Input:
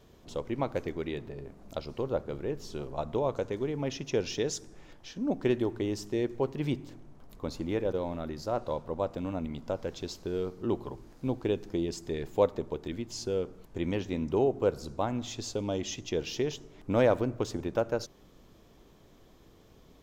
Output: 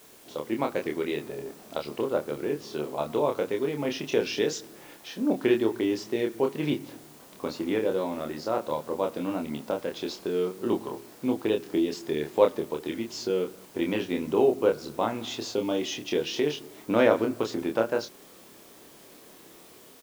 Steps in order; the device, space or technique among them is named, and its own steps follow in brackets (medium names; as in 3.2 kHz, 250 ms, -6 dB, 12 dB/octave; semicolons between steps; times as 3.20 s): dictaphone (band-pass 260–4300 Hz; level rider gain up to 4.5 dB; wow and flutter; white noise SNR 28 dB); dynamic bell 660 Hz, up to -5 dB, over -36 dBFS, Q 1; doubling 27 ms -4 dB; trim +2 dB